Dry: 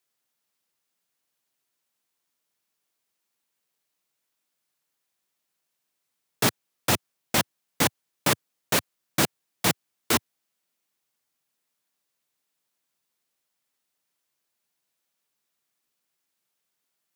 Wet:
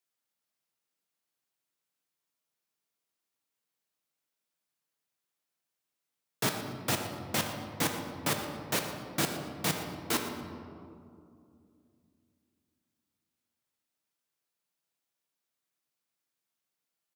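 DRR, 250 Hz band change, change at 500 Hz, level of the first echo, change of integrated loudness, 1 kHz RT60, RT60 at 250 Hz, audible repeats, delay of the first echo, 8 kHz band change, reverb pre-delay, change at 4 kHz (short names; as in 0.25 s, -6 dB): 3.0 dB, -5.0 dB, -5.5 dB, -14.5 dB, -6.5 dB, 2.2 s, 3.4 s, 1, 0.118 s, -7.0 dB, 4 ms, -6.5 dB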